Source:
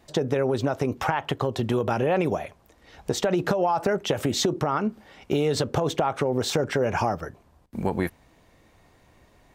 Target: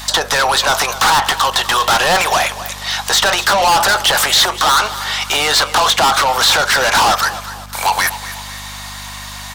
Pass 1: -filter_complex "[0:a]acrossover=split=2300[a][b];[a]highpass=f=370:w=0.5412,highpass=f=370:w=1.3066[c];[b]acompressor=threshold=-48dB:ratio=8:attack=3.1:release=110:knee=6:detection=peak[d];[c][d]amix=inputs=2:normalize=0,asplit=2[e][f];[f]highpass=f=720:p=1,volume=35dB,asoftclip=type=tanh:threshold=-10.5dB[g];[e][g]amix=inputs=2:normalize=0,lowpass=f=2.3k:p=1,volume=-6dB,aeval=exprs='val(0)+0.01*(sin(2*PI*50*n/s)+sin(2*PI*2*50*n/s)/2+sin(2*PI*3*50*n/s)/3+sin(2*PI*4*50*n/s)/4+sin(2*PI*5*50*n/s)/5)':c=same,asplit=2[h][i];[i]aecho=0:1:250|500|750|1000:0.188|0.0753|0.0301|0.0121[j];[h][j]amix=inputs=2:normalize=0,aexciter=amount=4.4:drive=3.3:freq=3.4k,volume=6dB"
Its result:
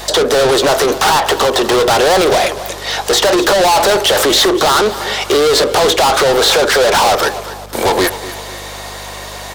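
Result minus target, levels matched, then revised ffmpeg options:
500 Hz band +9.0 dB
-filter_complex "[0:a]acrossover=split=2300[a][b];[a]highpass=f=920:w=0.5412,highpass=f=920:w=1.3066[c];[b]acompressor=threshold=-48dB:ratio=8:attack=3.1:release=110:knee=6:detection=peak[d];[c][d]amix=inputs=2:normalize=0,asplit=2[e][f];[f]highpass=f=720:p=1,volume=35dB,asoftclip=type=tanh:threshold=-10.5dB[g];[e][g]amix=inputs=2:normalize=0,lowpass=f=2.3k:p=1,volume=-6dB,aeval=exprs='val(0)+0.01*(sin(2*PI*50*n/s)+sin(2*PI*2*50*n/s)/2+sin(2*PI*3*50*n/s)/3+sin(2*PI*4*50*n/s)/4+sin(2*PI*5*50*n/s)/5)':c=same,asplit=2[h][i];[i]aecho=0:1:250|500|750|1000:0.188|0.0753|0.0301|0.0121[j];[h][j]amix=inputs=2:normalize=0,aexciter=amount=4.4:drive=3.3:freq=3.4k,volume=6dB"

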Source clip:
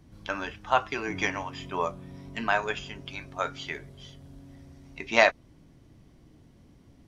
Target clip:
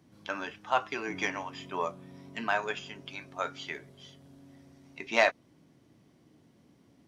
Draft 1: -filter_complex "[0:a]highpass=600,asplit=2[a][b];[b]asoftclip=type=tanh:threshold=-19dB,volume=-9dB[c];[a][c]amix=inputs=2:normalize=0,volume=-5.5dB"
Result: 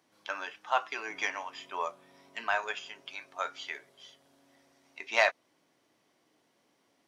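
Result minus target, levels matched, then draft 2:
125 Hz band -18.0 dB
-filter_complex "[0:a]highpass=160,asplit=2[a][b];[b]asoftclip=type=tanh:threshold=-19dB,volume=-9dB[c];[a][c]amix=inputs=2:normalize=0,volume=-5.5dB"

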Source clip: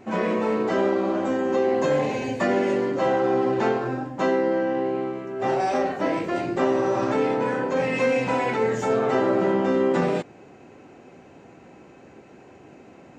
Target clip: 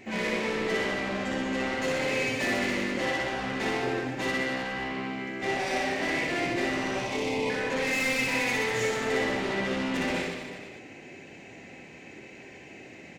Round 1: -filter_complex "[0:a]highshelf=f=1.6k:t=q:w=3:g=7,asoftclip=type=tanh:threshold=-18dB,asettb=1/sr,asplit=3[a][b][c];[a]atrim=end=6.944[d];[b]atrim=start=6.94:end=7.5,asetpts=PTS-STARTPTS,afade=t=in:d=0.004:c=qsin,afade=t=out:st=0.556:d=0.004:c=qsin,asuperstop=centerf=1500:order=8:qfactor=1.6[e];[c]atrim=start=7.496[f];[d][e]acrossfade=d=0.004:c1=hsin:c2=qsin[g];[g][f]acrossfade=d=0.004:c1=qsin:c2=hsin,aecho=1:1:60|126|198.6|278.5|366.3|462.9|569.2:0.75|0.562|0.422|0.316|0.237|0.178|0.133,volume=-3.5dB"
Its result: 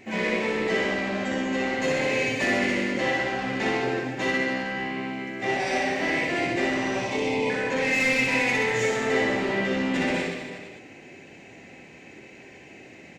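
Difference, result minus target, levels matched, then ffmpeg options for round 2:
soft clip: distortion -6 dB
-filter_complex "[0:a]highshelf=f=1.6k:t=q:w=3:g=7,asoftclip=type=tanh:threshold=-25dB,asettb=1/sr,asplit=3[a][b][c];[a]atrim=end=6.944[d];[b]atrim=start=6.94:end=7.5,asetpts=PTS-STARTPTS,afade=t=in:d=0.004:c=qsin,afade=t=out:st=0.556:d=0.004:c=qsin,asuperstop=centerf=1500:order=8:qfactor=1.6[e];[c]atrim=start=7.496[f];[d][e]acrossfade=d=0.004:c1=hsin:c2=qsin[g];[g][f]acrossfade=d=0.004:c1=qsin:c2=hsin,aecho=1:1:60|126|198.6|278.5|366.3|462.9|569.2:0.75|0.562|0.422|0.316|0.237|0.178|0.133,volume=-3.5dB"

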